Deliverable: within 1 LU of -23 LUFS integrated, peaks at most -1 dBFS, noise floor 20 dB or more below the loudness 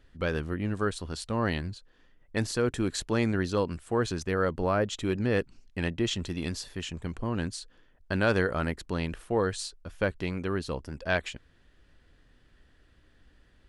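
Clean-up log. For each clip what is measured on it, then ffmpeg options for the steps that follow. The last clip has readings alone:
loudness -30.5 LUFS; peak level -11.5 dBFS; loudness target -23.0 LUFS
-> -af "volume=2.37"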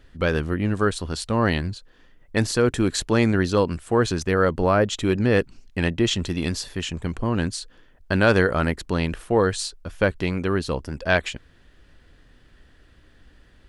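loudness -23.0 LUFS; peak level -4.0 dBFS; noise floor -54 dBFS

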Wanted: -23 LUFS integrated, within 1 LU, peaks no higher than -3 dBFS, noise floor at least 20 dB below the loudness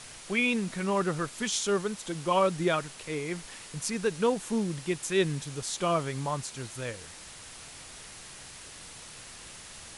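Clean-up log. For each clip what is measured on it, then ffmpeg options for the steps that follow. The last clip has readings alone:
noise floor -47 dBFS; noise floor target -50 dBFS; loudness -30.0 LUFS; peak level -14.0 dBFS; loudness target -23.0 LUFS
-> -af "afftdn=nr=6:nf=-47"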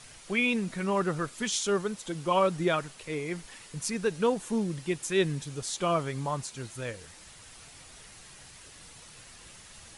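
noise floor -51 dBFS; loudness -30.0 LUFS; peak level -14.0 dBFS; loudness target -23.0 LUFS
-> -af "volume=2.24"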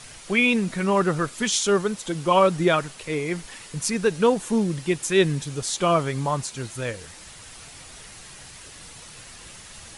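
loudness -23.0 LUFS; peak level -7.0 dBFS; noise floor -44 dBFS

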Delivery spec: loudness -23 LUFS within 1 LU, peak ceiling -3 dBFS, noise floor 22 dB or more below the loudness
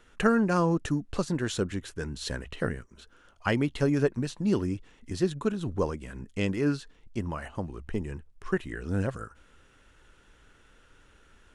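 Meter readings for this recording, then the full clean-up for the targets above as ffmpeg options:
loudness -30.0 LUFS; peak level -9.0 dBFS; loudness target -23.0 LUFS
-> -af "volume=2.24,alimiter=limit=0.708:level=0:latency=1"

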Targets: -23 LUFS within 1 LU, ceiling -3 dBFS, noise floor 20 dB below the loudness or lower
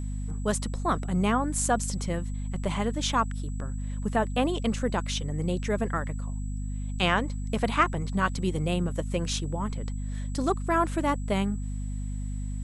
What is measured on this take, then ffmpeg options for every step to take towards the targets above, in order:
hum 50 Hz; highest harmonic 250 Hz; hum level -30 dBFS; steady tone 7.8 kHz; tone level -52 dBFS; loudness -29.0 LUFS; peak level -8.0 dBFS; loudness target -23.0 LUFS
-> -af "bandreject=f=50:t=h:w=4,bandreject=f=100:t=h:w=4,bandreject=f=150:t=h:w=4,bandreject=f=200:t=h:w=4,bandreject=f=250:t=h:w=4"
-af "bandreject=f=7800:w=30"
-af "volume=2,alimiter=limit=0.708:level=0:latency=1"

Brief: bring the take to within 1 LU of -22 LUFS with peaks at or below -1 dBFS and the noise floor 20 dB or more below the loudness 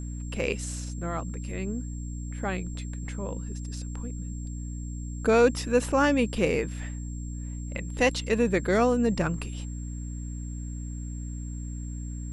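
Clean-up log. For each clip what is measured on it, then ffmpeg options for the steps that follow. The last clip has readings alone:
hum 60 Hz; highest harmonic 300 Hz; hum level -33 dBFS; steady tone 7.5 kHz; tone level -48 dBFS; loudness -29.5 LUFS; peak level -8.5 dBFS; loudness target -22.0 LUFS
-> -af "bandreject=f=60:t=h:w=6,bandreject=f=120:t=h:w=6,bandreject=f=180:t=h:w=6,bandreject=f=240:t=h:w=6,bandreject=f=300:t=h:w=6"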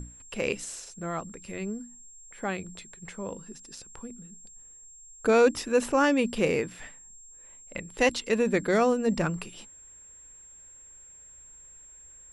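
hum not found; steady tone 7.5 kHz; tone level -48 dBFS
-> -af "bandreject=f=7500:w=30"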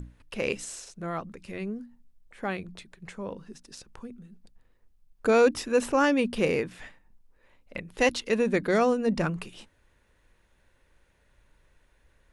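steady tone not found; loudness -27.5 LUFS; peak level -9.5 dBFS; loudness target -22.0 LUFS
-> -af "volume=1.88"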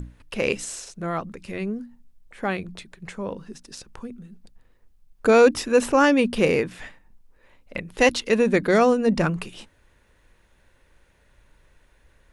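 loudness -22.0 LUFS; peak level -4.0 dBFS; noise floor -61 dBFS

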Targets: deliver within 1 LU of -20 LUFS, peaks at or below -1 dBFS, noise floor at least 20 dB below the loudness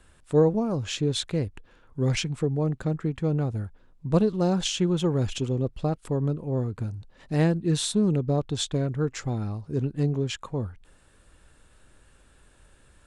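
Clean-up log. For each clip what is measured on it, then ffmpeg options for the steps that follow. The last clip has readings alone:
loudness -26.5 LUFS; peak level -9.5 dBFS; loudness target -20.0 LUFS
-> -af "volume=2.11"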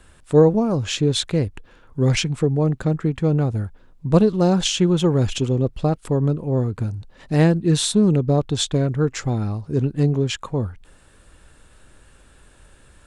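loudness -20.0 LUFS; peak level -3.0 dBFS; noise floor -52 dBFS

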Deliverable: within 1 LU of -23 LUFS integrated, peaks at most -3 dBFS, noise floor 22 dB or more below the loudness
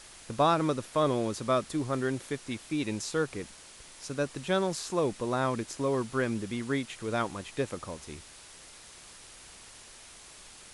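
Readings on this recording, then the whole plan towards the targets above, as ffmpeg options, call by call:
noise floor -51 dBFS; noise floor target -53 dBFS; loudness -31.0 LUFS; peak level -13.0 dBFS; loudness target -23.0 LUFS
-> -af "afftdn=nr=6:nf=-51"
-af "volume=2.51"

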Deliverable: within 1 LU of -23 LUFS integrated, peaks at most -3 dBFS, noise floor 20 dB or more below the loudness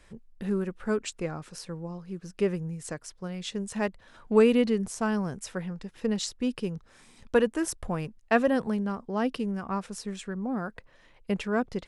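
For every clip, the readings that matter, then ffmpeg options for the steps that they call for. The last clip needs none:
loudness -30.0 LUFS; peak level -8.5 dBFS; loudness target -23.0 LUFS
-> -af "volume=2.24,alimiter=limit=0.708:level=0:latency=1"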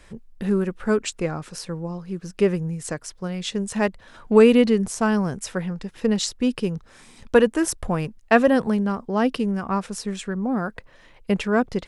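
loudness -23.0 LUFS; peak level -3.0 dBFS; noise floor -51 dBFS

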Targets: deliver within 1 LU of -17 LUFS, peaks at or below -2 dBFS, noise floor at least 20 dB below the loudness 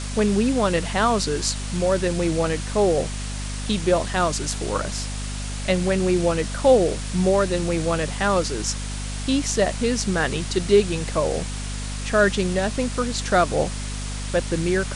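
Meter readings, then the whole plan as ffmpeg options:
hum 50 Hz; highest harmonic 250 Hz; hum level -27 dBFS; noise floor -29 dBFS; noise floor target -43 dBFS; loudness -22.5 LUFS; peak level -5.0 dBFS; loudness target -17.0 LUFS
-> -af "bandreject=f=50:t=h:w=4,bandreject=f=100:t=h:w=4,bandreject=f=150:t=h:w=4,bandreject=f=200:t=h:w=4,bandreject=f=250:t=h:w=4"
-af "afftdn=nr=14:nf=-29"
-af "volume=1.88,alimiter=limit=0.794:level=0:latency=1"

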